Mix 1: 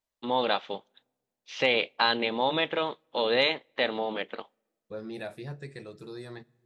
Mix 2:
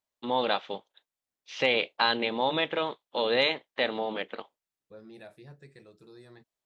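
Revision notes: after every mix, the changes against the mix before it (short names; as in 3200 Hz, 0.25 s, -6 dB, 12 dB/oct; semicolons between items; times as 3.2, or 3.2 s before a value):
second voice -6.5 dB; reverb: off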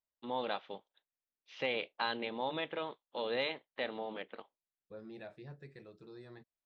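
first voice -9.0 dB; master: add air absorption 130 m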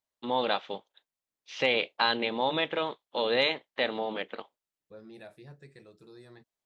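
first voice +8.0 dB; master: remove air absorption 130 m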